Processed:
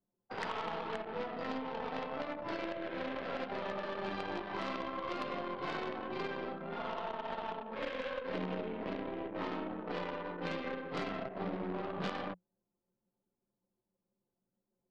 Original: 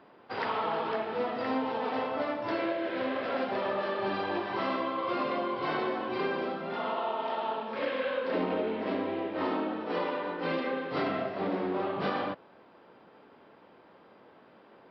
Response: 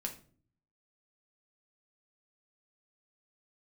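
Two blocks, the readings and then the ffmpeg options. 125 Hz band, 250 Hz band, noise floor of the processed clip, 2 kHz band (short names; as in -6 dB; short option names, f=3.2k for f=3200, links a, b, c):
-2.5 dB, -7.0 dB, under -85 dBFS, -6.5 dB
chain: -filter_complex "[0:a]aeval=exprs='0.119*(cos(1*acos(clip(val(0)/0.119,-1,1)))-cos(1*PI/2))+0.0188*(cos(3*acos(clip(val(0)/0.119,-1,1)))-cos(3*PI/2))+0.0106*(cos(6*acos(clip(val(0)/0.119,-1,1)))-cos(6*PI/2))+0.00422*(cos(8*acos(clip(val(0)/0.119,-1,1)))-cos(8*PI/2))':c=same,acrossover=split=89|2000[a][b][c];[a]acompressor=threshold=-52dB:ratio=4[d];[b]acompressor=threshold=-35dB:ratio=4[e];[d][e][c]amix=inputs=3:normalize=0,anlmdn=0.1,equalizer=f=180:w=7.1:g=9.5,volume=-1dB"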